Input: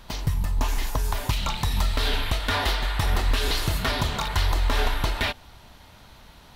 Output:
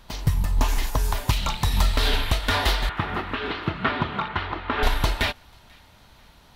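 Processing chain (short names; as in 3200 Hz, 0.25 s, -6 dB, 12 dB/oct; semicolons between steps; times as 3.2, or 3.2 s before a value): 2.89–4.83 speaker cabinet 120–3000 Hz, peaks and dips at 200 Hz +5 dB, 330 Hz +6 dB, 570 Hz -3 dB, 1300 Hz +6 dB; thin delay 0.489 s, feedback 43%, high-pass 1500 Hz, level -23 dB; upward expander 1.5:1, over -34 dBFS; gain +4 dB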